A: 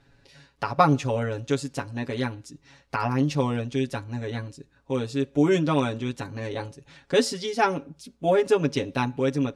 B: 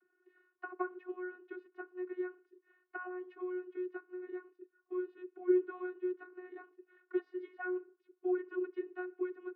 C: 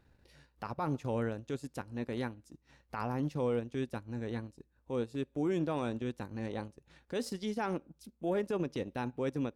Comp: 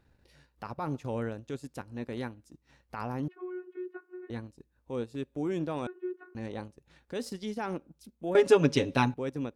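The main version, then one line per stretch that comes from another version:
C
0:03.28–0:04.30: punch in from B
0:05.87–0:06.35: punch in from B
0:08.35–0:09.14: punch in from A

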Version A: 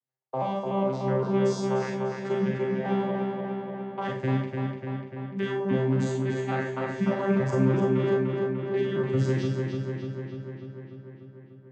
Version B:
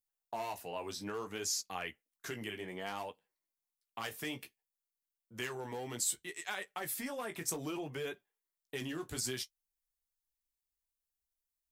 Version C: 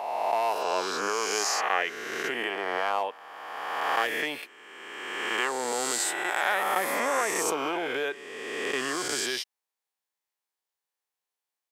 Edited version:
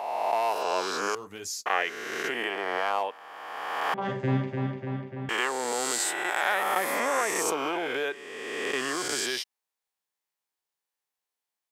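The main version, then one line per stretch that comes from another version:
C
0:01.15–0:01.66: punch in from B
0:03.94–0:05.29: punch in from A

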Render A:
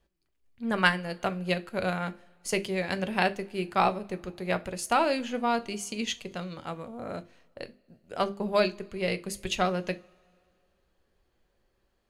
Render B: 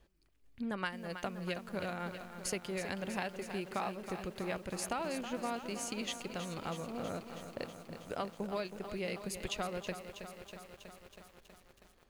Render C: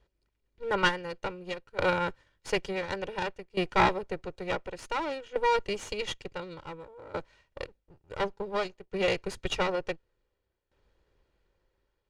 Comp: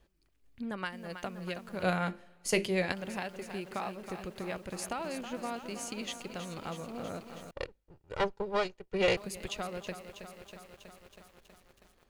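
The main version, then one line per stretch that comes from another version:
B
0:01.83–0:02.92: punch in from A
0:07.51–0:09.17: punch in from C

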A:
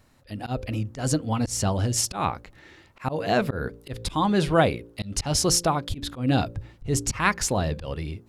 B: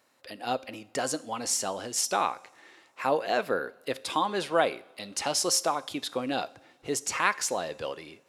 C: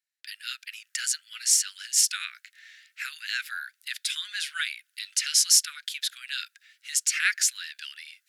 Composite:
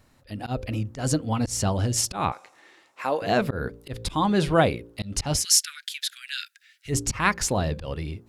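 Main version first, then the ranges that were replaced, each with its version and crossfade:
A
0:02.32–0:03.22: punch in from B
0:05.40–0:06.90: punch in from C, crossfade 0.10 s

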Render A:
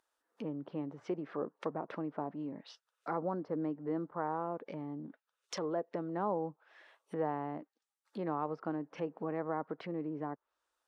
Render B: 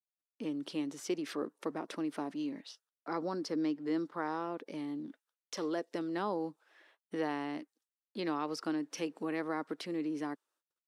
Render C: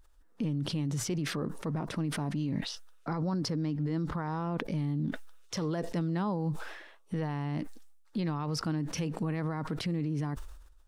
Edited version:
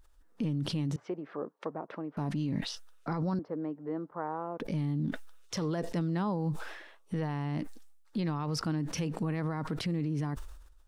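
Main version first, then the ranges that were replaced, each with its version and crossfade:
C
0:00.96–0:02.17: punch in from A
0:03.39–0:04.60: punch in from A
not used: B

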